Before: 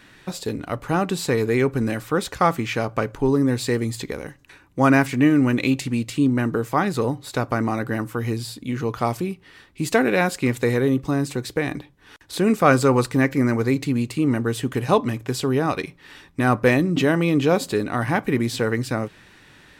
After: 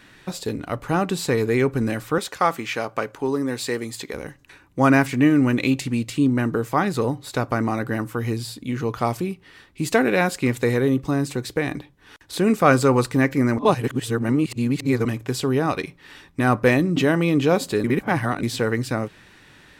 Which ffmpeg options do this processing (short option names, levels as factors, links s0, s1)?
-filter_complex "[0:a]asettb=1/sr,asplit=3[s0][s1][s2];[s0]atrim=end=2.184[s3];[s1]atrim=start=2.18:end=4.14,asetpts=PTS-STARTPTS,afade=t=in:d=0.004:c=qsin,afade=t=out:st=1.956:d=0.004:c=qsin,highpass=f=420:p=1[s4];[s2]atrim=start=4.136[s5];[s3][s4]acrossfade=d=0.004:c1=hsin:c2=qsin[s6];[s6][s5]acrossfade=d=0.004:c1=qsin:c2=hsin,asplit=5[s7][s8][s9][s10][s11];[s7]atrim=end=13.582[s12];[s8]atrim=start=13.578:end=15.052,asetpts=PTS-STARTPTS,areverse[s13];[s9]atrim=start=15.048:end=17.842[s14];[s10]atrim=start=17.838:end=18.432,asetpts=PTS-STARTPTS,areverse[s15];[s11]atrim=start=18.428[s16];[s12][s13]acrossfade=d=0.004:c1=hsin:c2=hsin[s17];[s17][s14]acrossfade=d=0.004:c1=hsin:c2=hsin[s18];[s18][s15]acrossfade=d=0.004:c1=hsin:c2=hsin[s19];[s19][s16]acrossfade=d=0.004:c1=hsin:c2=hsin"